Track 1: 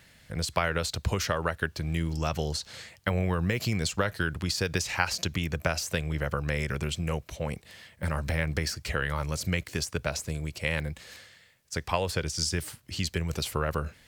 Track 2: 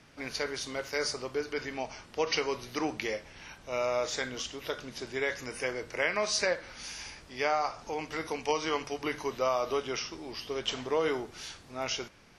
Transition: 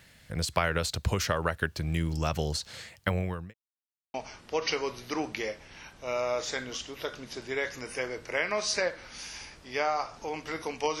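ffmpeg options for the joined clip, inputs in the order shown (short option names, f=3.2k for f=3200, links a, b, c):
-filter_complex "[0:a]apad=whole_dur=11,atrim=end=11,asplit=2[a][b];[a]atrim=end=3.54,asetpts=PTS-STARTPTS,afade=t=out:st=3.07:d=0.47[c];[b]atrim=start=3.54:end=4.14,asetpts=PTS-STARTPTS,volume=0[d];[1:a]atrim=start=1.79:end=8.65,asetpts=PTS-STARTPTS,afade=t=in:d=0.004:c=hsin[e];[c][d][e]concat=n=3:v=0:a=1"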